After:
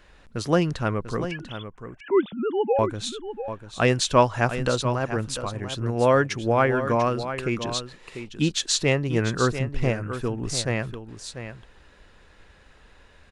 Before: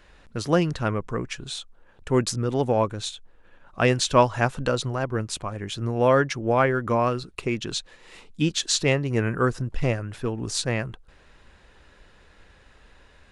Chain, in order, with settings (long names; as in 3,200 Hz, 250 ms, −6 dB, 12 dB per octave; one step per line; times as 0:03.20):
0:01.31–0:02.79: three sine waves on the formant tracks
single-tap delay 693 ms −10.5 dB